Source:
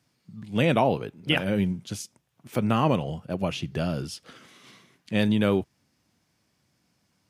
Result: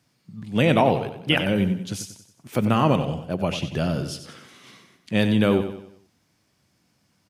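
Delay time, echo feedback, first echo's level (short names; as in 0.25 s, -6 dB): 93 ms, 43%, -10.0 dB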